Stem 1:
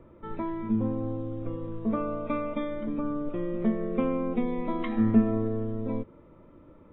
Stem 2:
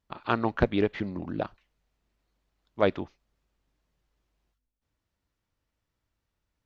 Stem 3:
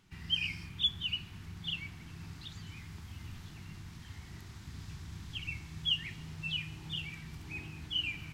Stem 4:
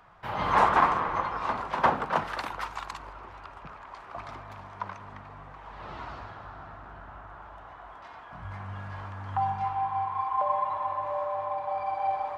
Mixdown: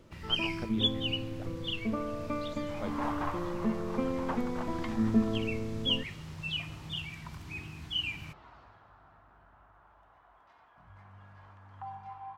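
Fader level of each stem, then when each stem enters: -5.0 dB, -18.5 dB, +1.0 dB, -15.0 dB; 0.00 s, 0.00 s, 0.00 s, 2.45 s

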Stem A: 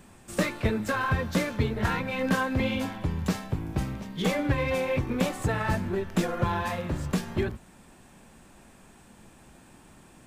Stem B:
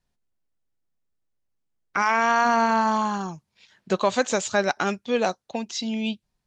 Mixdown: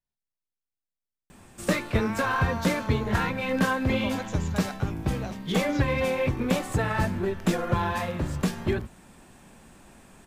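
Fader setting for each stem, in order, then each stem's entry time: +1.5 dB, -15.5 dB; 1.30 s, 0.00 s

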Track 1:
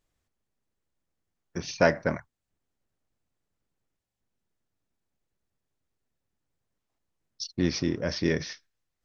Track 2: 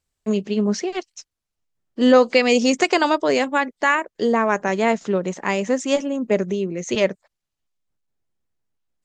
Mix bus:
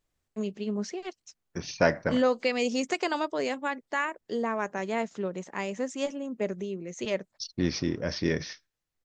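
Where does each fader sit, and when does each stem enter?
-1.5 dB, -11.0 dB; 0.00 s, 0.10 s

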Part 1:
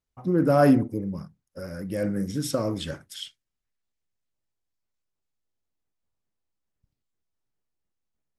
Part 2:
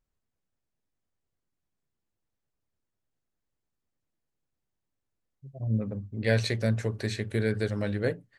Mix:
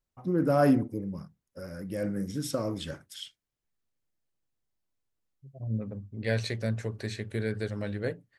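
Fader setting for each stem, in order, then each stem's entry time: -4.5 dB, -4.0 dB; 0.00 s, 0.00 s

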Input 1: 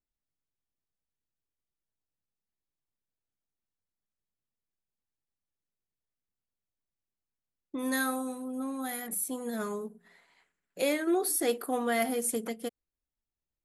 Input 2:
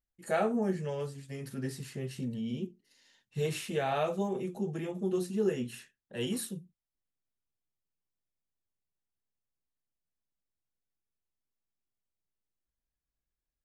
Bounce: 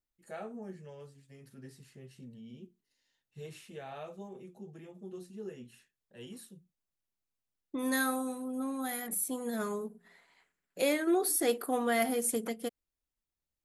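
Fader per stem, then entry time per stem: -0.5 dB, -13.5 dB; 0.00 s, 0.00 s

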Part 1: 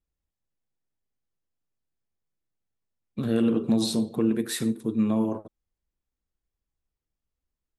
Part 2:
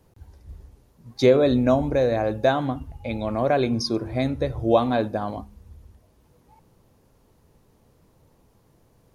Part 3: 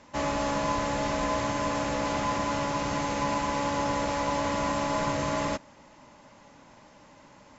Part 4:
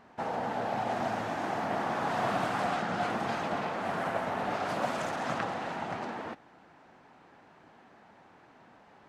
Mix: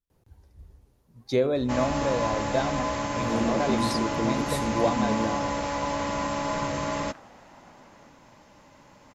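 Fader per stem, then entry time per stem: -5.5 dB, -7.0 dB, -0.5 dB, -18.0 dB; 0.00 s, 0.10 s, 1.55 s, 1.75 s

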